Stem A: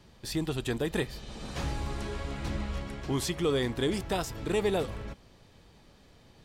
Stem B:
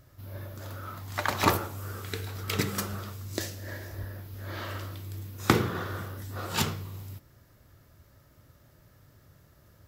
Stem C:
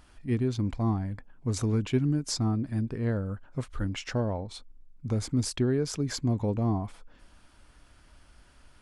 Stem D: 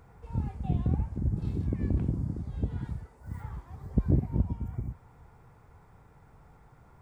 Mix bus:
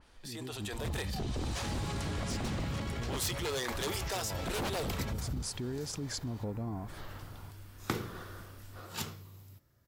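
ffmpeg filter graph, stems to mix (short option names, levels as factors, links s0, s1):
-filter_complex "[0:a]highpass=520,dynaudnorm=f=170:g=13:m=2,volume=0.596[s0];[1:a]adelay=2400,volume=0.119[s1];[2:a]acompressor=threshold=0.0141:ratio=3,volume=0.531,asplit=2[s2][s3];[3:a]adelay=500,volume=0.841[s4];[s3]apad=whole_len=541444[s5];[s1][s5]sidechaincompress=threshold=0.00398:ratio=8:attack=6.8:release=116[s6];[s0][s2][s4]amix=inputs=3:normalize=0,aeval=exprs='0.0447*(abs(mod(val(0)/0.0447+3,4)-2)-1)':c=same,alimiter=level_in=3.98:limit=0.0631:level=0:latency=1:release=25,volume=0.251,volume=1[s7];[s6][s7]amix=inputs=2:normalize=0,dynaudnorm=f=160:g=7:m=2.11,adynamicequalizer=threshold=0.002:dfrequency=3600:dqfactor=0.7:tfrequency=3600:tqfactor=0.7:attack=5:release=100:ratio=0.375:range=2:mode=boostabove:tftype=highshelf"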